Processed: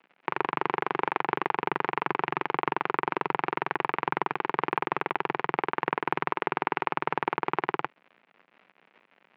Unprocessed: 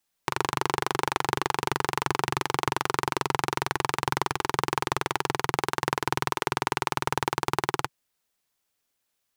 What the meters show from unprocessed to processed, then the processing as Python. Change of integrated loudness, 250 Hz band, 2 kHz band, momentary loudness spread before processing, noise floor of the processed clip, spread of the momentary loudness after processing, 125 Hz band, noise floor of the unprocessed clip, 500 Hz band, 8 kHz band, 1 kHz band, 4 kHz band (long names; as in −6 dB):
−1.5 dB, −1.0 dB, −1.0 dB, 1 LU, −68 dBFS, 1 LU, −9.0 dB, −78 dBFS, −0.5 dB, below −35 dB, −0.5 dB, −10.0 dB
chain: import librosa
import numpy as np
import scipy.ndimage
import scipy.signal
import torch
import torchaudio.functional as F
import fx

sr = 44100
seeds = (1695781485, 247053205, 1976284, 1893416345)

y = fx.dmg_crackle(x, sr, seeds[0], per_s=170.0, level_db=-37.0)
y = scipy.signal.sosfilt(scipy.signal.ellip(3, 1.0, 70, [180.0, 2500.0], 'bandpass', fs=sr, output='sos'), y)